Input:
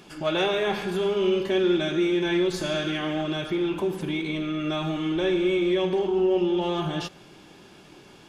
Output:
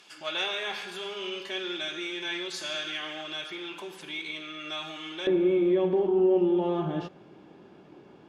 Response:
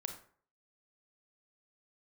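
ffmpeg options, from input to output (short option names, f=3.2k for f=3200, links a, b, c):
-af "asetnsamples=n=441:p=0,asendcmd='5.27 bandpass f 360',bandpass=f=4.1k:t=q:w=0.5:csg=0"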